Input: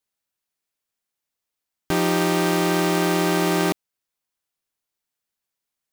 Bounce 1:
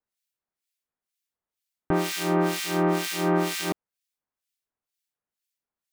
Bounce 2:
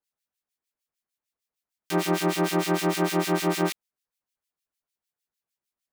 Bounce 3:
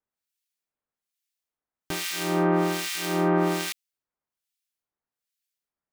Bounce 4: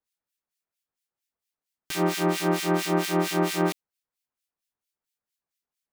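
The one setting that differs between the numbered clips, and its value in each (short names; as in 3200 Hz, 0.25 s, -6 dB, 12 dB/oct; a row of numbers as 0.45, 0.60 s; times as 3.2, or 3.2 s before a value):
harmonic tremolo, rate: 2.1, 6.6, 1.2, 4.4 Hz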